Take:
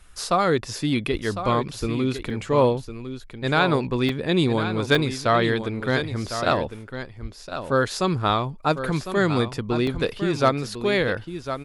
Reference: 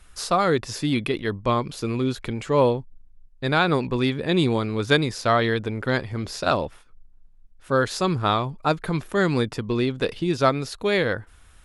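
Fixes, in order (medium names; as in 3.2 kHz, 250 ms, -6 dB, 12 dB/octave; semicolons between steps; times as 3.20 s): clip repair -7 dBFS; de-plosive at 1.11/1.80/7.21/9.93 s; interpolate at 2.30/4.09/4.95/9.87 s, 2.8 ms; inverse comb 1054 ms -10 dB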